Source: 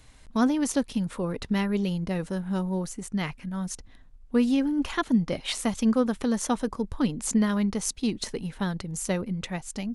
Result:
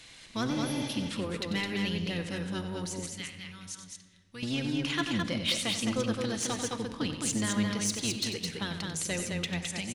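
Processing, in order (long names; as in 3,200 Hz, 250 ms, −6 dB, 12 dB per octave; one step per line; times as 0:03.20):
sub-octave generator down 1 octave, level −3 dB
meter weighting curve D
0:00.54–0:00.85: healed spectral selection 430–10,000 Hz before
0:03.06–0:04.43: guitar amp tone stack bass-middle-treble 5-5-5
in parallel at +2.5 dB: downward compressor, threshold −47 dBFS, peak gain reduction 28 dB
on the sum: soft clipping −14.5 dBFS, distortion −19 dB
on a send: loudspeakers that aren't time-aligned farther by 32 metres −10 dB, 73 metres −4 dB
on the sum: rectangular room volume 3,000 cubic metres, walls mixed, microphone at 0.73 metres
level −7.5 dB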